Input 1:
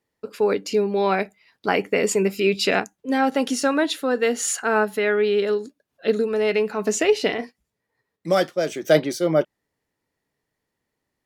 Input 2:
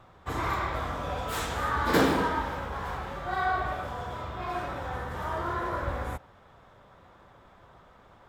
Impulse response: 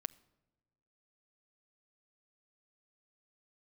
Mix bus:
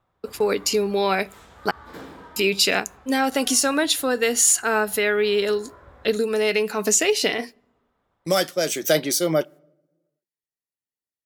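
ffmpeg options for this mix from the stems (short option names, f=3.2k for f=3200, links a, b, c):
-filter_complex "[0:a]agate=range=-26dB:threshold=-38dB:ratio=16:detection=peak,crystalizer=i=4:c=0,volume=-2.5dB,asplit=3[a][b][c];[a]atrim=end=1.71,asetpts=PTS-STARTPTS,afade=t=out:st=1.706:d=0.004:c=hsin[d];[b]atrim=start=1.71:end=2.36,asetpts=PTS-STARTPTS,volume=0[e];[c]atrim=start=2.36,asetpts=PTS-STARTPTS,afade=t=in:d=0.004:c=hsin[f];[d][e][f]concat=n=3:v=0:a=1,asplit=2[g][h];[h]volume=-6.5dB[i];[1:a]volume=-17dB[j];[2:a]atrim=start_sample=2205[k];[i][k]afir=irnorm=-1:irlink=0[l];[g][j][l]amix=inputs=3:normalize=0,acompressor=threshold=-18dB:ratio=2"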